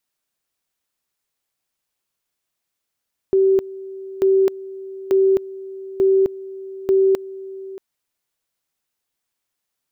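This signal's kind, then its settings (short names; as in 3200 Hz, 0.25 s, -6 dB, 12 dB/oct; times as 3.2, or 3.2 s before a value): two-level tone 385 Hz -11.5 dBFS, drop 18.5 dB, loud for 0.26 s, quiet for 0.63 s, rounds 5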